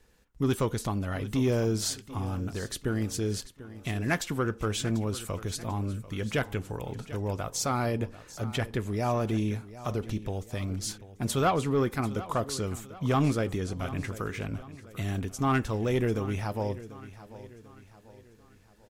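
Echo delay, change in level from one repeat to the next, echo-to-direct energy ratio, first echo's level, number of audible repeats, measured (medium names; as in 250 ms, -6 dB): 742 ms, -7.0 dB, -15.0 dB, -16.0 dB, 3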